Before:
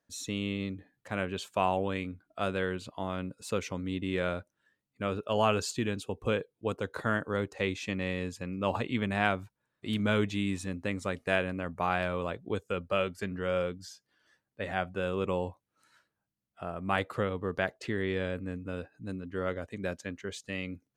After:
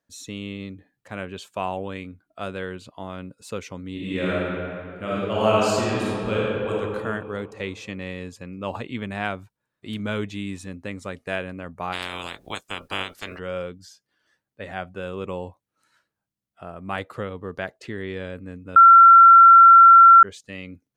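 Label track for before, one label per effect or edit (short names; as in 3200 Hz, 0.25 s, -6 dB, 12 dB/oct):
3.930000	6.710000	reverb throw, RT60 2.4 s, DRR -7 dB
11.920000	13.380000	spectral limiter ceiling under each frame's peak by 29 dB
18.760000	20.230000	bleep 1360 Hz -6 dBFS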